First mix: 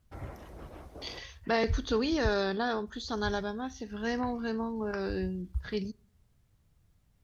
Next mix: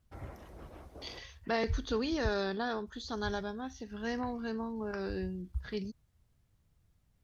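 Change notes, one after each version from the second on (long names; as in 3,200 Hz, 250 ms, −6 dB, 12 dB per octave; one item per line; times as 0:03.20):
reverb: off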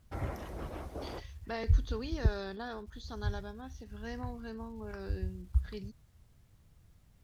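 first voice +8.5 dB
second voice −6.5 dB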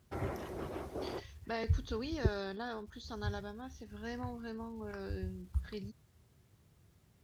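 first voice: add parametric band 380 Hz +8 dB 0.25 octaves
master: add high-pass filter 88 Hz 12 dB per octave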